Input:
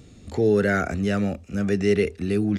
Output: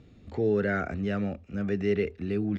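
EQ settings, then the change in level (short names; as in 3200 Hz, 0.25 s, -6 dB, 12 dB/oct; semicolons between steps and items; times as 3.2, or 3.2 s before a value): LPF 3200 Hz 12 dB/oct; -6.0 dB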